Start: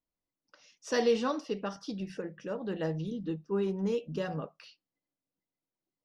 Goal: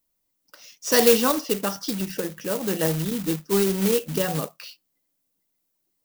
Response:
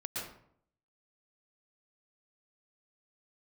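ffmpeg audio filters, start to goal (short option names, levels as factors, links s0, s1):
-af "acrusher=bits=3:mode=log:mix=0:aa=0.000001,aemphasis=mode=production:type=50kf,volume=2.66"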